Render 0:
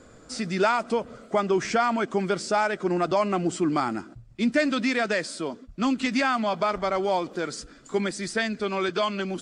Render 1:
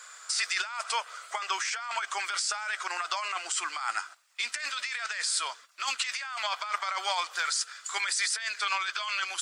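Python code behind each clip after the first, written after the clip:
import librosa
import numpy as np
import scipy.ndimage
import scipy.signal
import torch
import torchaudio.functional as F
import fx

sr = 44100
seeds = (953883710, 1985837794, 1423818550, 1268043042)

y = scipy.signal.sosfilt(scipy.signal.butter(4, 1100.0, 'highpass', fs=sr, output='sos'), x)
y = fx.high_shelf(y, sr, hz=7000.0, db=8.0)
y = fx.over_compress(y, sr, threshold_db=-36.0, ratio=-1.0)
y = y * 10.0 ** (4.5 / 20.0)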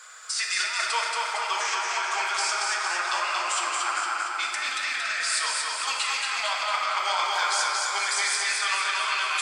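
y = fx.echo_feedback(x, sr, ms=229, feedback_pct=59, wet_db=-3.0)
y = fx.room_shoebox(y, sr, seeds[0], volume_m3=200.0, walls='hard', distance_m=0.57)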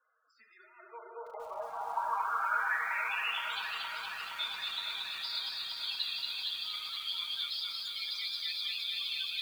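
y = fx.filter_sweep_bandpass(x, sr, from_hz=250.0, to_hz=3800.0, start_s=0.63, end_s=3.61, q=5.4)
y = fx.spec_topn(y, sr, count=32)
y = fx.echo_crushed(y, sr, ms=468, feedback_pct=80, bits=9, wet_db=-7)
y = y * 10.0 ** (2.0 / 20.0)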